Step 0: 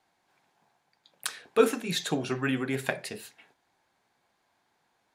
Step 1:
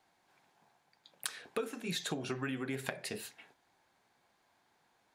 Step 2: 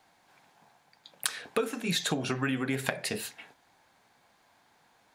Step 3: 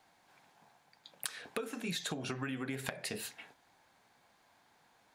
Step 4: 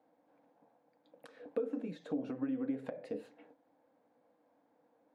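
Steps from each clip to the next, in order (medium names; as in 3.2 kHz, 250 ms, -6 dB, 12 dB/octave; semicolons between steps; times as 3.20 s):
compression 16:1, threshold -33 dBFS, peak gain reduction 19.5 dB
peaking EQ 370 Hz -5 dB 0.26 oct; trim +8 dB
compression 3:1, threshold -33 dBFS, peak gain reduction 8 dB; trim -3 dB
two resonant band-passes 380 Hz, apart 0.71 oct; trim +9.5 dB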